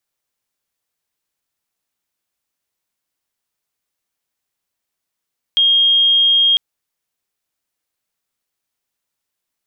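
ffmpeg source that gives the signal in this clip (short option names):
-f lavfi -i "aevalsrc='0.335*sin(2*PI*3240*t)':d=1:s=44100"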